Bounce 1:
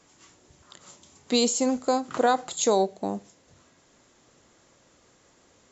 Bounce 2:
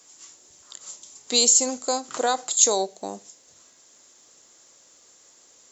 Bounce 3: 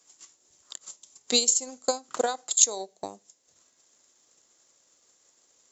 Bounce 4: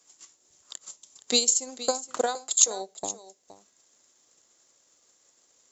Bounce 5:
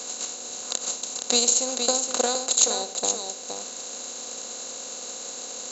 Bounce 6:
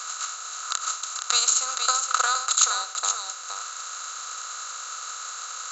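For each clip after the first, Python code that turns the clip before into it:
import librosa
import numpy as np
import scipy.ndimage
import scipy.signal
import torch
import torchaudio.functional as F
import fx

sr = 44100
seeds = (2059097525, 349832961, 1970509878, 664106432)

y1 = fx.bass_treble(x, sr, bass_db=-11, treble_db=15)
y1 = F.gain(torch.from_numpy(y1), -1.5).numpy()
y2 = fx.transient(y1, sr, attack_db=12, sustain_db=-5)
y2 = F.gain(torch.from_numpy(y2), -10.0).numpy()
y3 = y2 + 10.0 ** (-15.0 / 20.0) * np.pad(y2, (int(468 * sr / 1000.0), 0))[:len(y2)]
y4 = fx.bin_compress(y3, sr, power=0.4)
y4 = F.gain(torch.from_numpy(y4), -2.5).numpy()
y5 = fx.highpass_res(y4, sr, hz=1300.0, q=13.0)
y5 = F.gain(torch.from_numpy(y5), -1.0).numpy()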